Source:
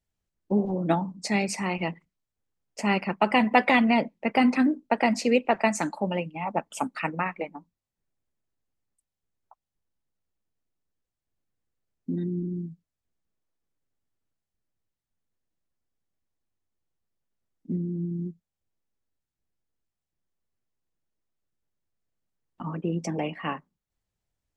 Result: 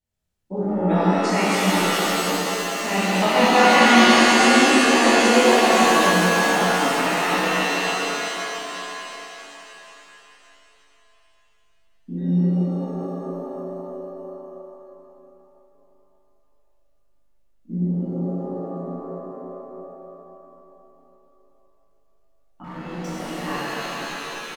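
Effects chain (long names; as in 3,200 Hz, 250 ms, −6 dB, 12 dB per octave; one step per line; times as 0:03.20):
ambience of single reflections 22 ms −3.5 dB, 38 ms −5.5 dB
0:22.64–0:23.46: hard clipping −33.5 dBFS, distortion −20 dB
reverb with rising layers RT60 3.5 s, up +7 semitones, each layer −2 dB, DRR −9.5 dB
level −6.5 dB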